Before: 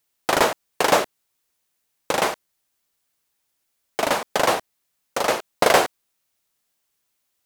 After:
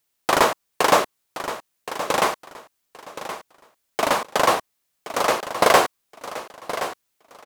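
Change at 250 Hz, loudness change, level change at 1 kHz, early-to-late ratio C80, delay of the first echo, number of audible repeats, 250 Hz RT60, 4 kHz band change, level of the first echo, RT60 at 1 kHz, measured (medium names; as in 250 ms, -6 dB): +0.5 dB, 0.0 dB, +2.5 dB, no reverb, 1072 ms, 2, no reverb, +0.5 dB, -12.0 dB, no reverb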